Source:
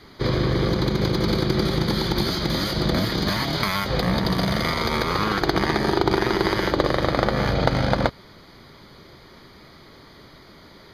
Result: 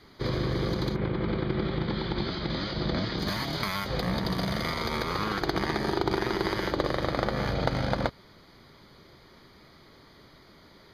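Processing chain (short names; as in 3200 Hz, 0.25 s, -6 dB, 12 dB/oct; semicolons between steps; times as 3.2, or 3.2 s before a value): 0.94–3.18 LPF 2700 Hz -> 5400 Hz 24 dB/oct; gain -7 dB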